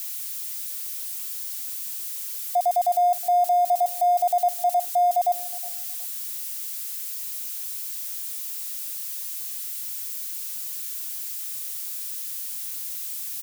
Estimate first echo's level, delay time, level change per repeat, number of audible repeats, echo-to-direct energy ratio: -20.0 dB, 0.365 s, -14.0 dB, 2, -20.0 dB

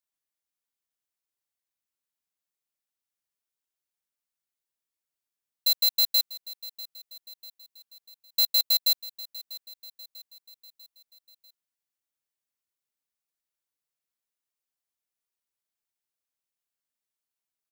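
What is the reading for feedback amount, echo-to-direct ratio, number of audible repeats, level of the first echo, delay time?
51%, -16.0 dB, 3, -17.5 dB, 0.644 s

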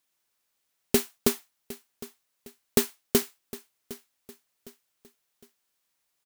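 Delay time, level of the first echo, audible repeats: 0.759 s, -18.0 dB, 3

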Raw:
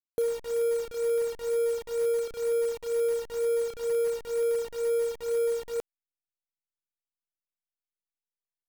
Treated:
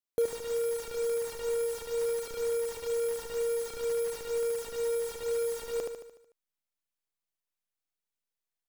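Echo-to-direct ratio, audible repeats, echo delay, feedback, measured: -2.5 dB, 6, 74 ms, 54%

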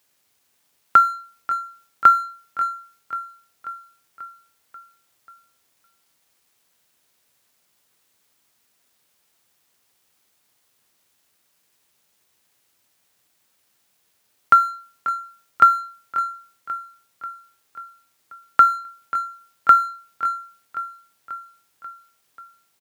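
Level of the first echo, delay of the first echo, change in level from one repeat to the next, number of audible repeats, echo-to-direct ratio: -14.0 dB, 0.538 s, -4.5 dB, 5, -12.0 dB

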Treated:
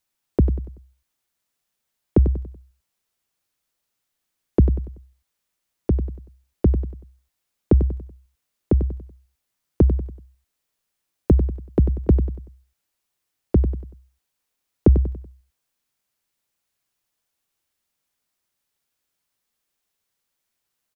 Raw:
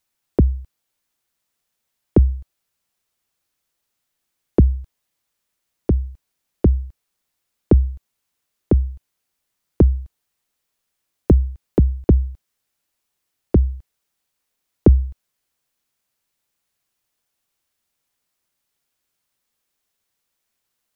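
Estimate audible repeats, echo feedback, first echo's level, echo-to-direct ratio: 3, 38%, -10.5 dB, -10.0 dB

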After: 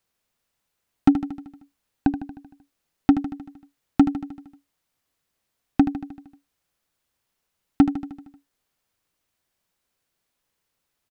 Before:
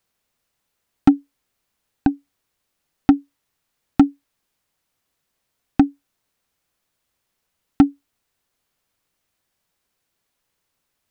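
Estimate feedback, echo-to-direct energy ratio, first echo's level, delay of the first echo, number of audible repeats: 59%, -8.5 dB, -10.5 dB, 77 ms, 6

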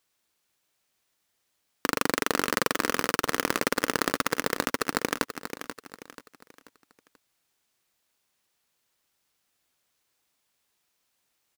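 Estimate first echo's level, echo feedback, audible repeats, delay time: -10.0 dB, 38%, 3, 0.485 s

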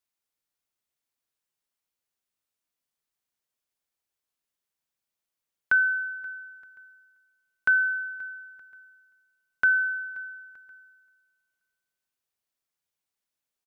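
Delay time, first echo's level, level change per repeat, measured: 0.529 s, -22.5 dB, -11.0 dB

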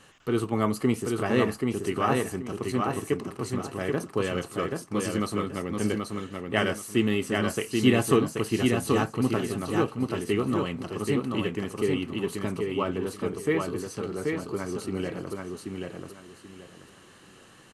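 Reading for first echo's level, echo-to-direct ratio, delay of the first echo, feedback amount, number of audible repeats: -3.5 dB, -3.0 dB, 0.782 s, 25%, 3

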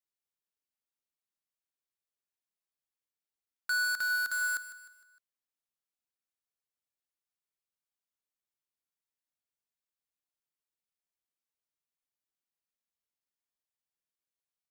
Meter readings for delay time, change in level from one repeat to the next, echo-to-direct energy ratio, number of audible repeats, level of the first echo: 0.153 s, -7.0 dB, -12.5 dB, 4, -13.5 dB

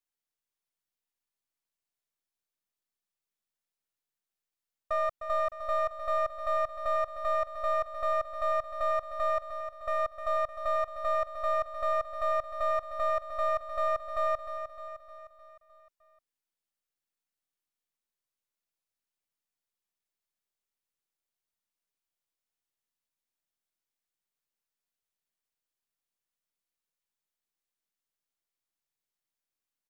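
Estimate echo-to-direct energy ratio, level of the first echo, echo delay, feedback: -7.5 dB, -9.0 dB, 0.306 s, 54%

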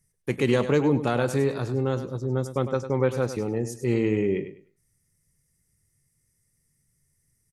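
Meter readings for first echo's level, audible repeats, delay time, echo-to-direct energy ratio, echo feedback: -11.0 dB, 2, 0.101 s, -11.0 dB, 23%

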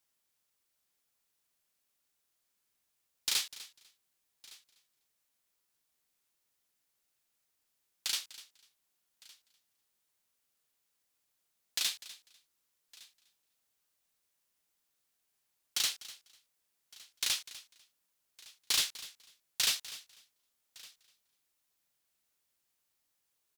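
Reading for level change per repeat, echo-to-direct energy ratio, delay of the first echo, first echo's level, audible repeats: no steady repeat, -16.0 dB, 0.248 s, -17.0 dB, 3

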